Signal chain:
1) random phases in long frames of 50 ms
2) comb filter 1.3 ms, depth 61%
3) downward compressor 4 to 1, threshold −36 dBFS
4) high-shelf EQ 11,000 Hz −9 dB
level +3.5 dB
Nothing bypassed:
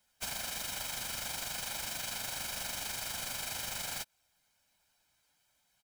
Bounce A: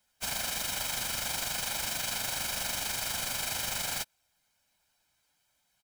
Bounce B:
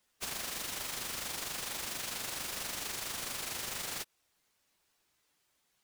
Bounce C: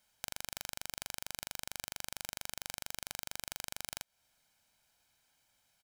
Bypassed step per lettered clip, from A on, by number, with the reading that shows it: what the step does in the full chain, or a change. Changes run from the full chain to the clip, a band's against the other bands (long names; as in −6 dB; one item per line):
3, average gain reduction 5.0 dB
2, 250 Hz band +2.5 dB
1, change in crest factor +18.5 dB